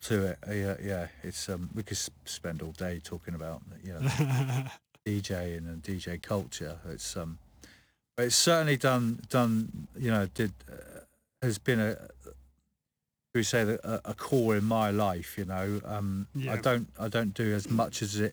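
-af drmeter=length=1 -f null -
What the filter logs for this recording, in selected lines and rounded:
Channel 1: DR: 11.5
Overall DR: 11.5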